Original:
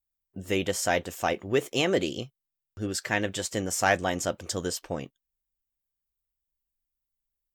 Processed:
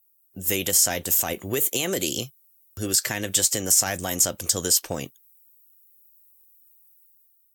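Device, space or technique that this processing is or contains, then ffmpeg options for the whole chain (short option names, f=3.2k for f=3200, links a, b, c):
FM broadcast chain: -filter_complex "[0:a]asettb=1/sr,asplit=3[a][b][c];[a]atrim=end=1.224[d];[b]atrim=start=1.22:end=1.88,asetpts=PTS-STARTPTS,afade=t=in:d=0.004:c=qsin,afade=t=out:st=0.656:d=0.004:c=qsin,bandreject=f=5.3k:w=5[e];[c]atrim=start=1.876[f];[d][e]acrossfade=d=0.004:c1=hsin:c2=qsin[g];[g][f]acrossfade=d=0.004:c1=qsin:c2=hsin,highpass=46,lowshelf=f=170:g=3.5,dynaudnorm=f=140:g=7:m=7dB,acrossover=split=320|7700[h][i][j];[h]acompressor=threshold=-28dB:ratio=4[k];[i]acompressor=threshold=-23dB:ratio=4[l];[j]acompressor=threshold=-45dB:ratio=4[m];[k][l][m]amix=inputs=3:normalize=0,aemphasis=mode=production:type=50fm,alimiter=limit=-13dB:level=0:latency=1:release=68,asoftclip=type=hard:threshold=-14.5dB,lowpass=f=15k:w=0.5412,lowpass=f=15k:w=1.3066,aemphasis=mode=production:type=50fm,volume=-2dB"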